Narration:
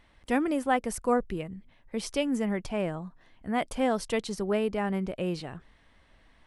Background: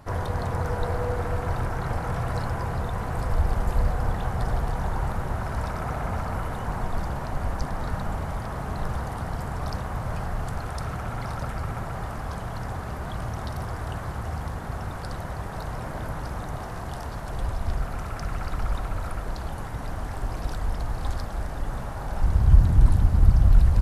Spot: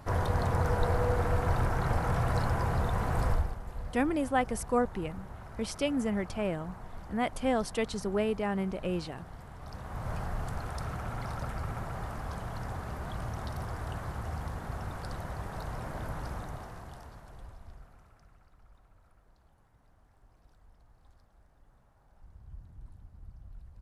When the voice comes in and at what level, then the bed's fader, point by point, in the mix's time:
3.65 s, −2.0 dB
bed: 0:03.29 −1 dB
0:03.59 −16.5 dB
0:09.58 −16.5 dB
0:10.09 −5.5 dB
0:16.32 −5.5 dB
0:18.51 −32.5 dB

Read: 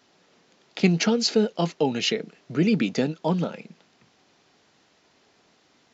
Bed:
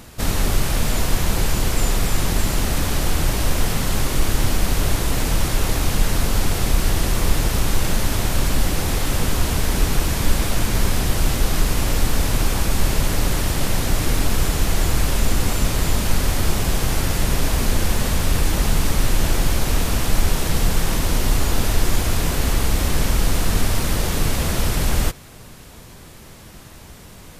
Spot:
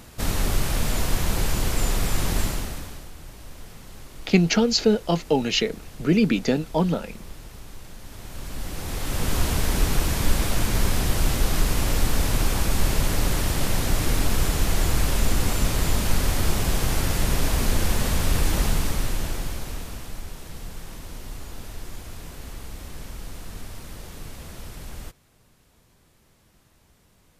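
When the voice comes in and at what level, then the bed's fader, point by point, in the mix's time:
3.50 s, +2.0 dB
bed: 0:02.43 −4 dB
0:03.11 −22.5 dB
0:07.98 −22.5 dB
0:09.36 −3 dB
0:18.60 −3 dB
0:20.26 −18.5 dB

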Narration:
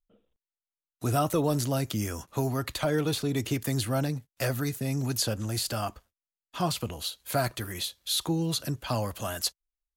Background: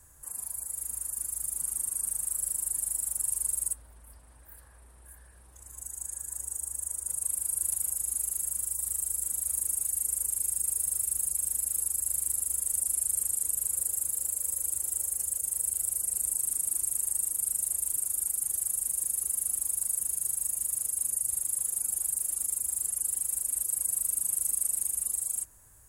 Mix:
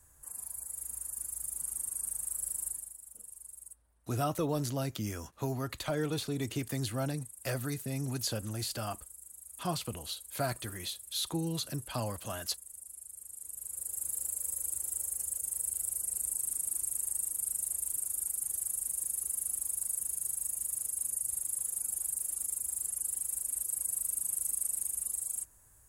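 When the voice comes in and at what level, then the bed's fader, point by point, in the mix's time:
3.05 s, −6.0 dB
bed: 0:02.68 −5 dB
0:02.97 −19 dB
0:13.19 −19 dB
0:14.11 −4.5 dB

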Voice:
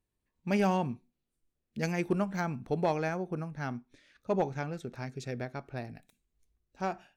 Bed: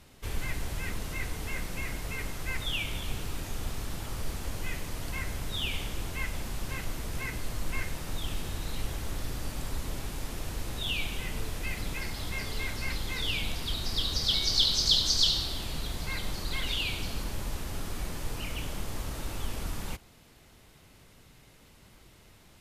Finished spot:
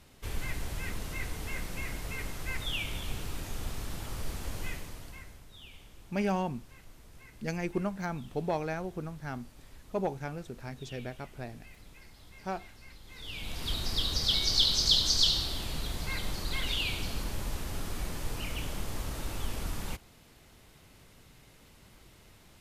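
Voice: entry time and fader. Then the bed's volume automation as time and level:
5.65 s, −2.5 dB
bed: 0:04.66 −2 dB
0:05.47 −18.5 dB
0:13.02 −18.5 dB
0:13.68 −0.5 dB

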